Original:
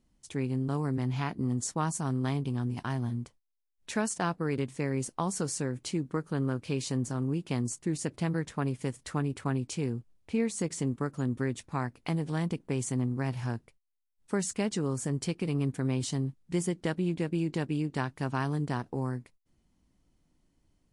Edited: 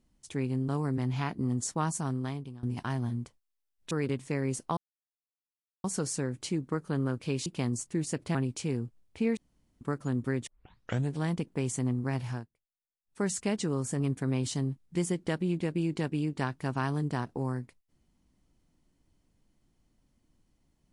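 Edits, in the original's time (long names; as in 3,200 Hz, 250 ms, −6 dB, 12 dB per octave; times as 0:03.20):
0:01.99–0:02.63: fade out, to −19.5 dB
0:03.91–0:04.40: remove
0:05.26: splice in silence 1.07 s
0:06.88–0:07.38: remove
0:08.27–0:09.48: remove
0:10.50–0:10.94: fill with room tone
0:11.60: tape start 0.66 s
0:13.42–0:14.37: duck −20.5 dB, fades 0.19 s
0:15.13–0:15.57: remove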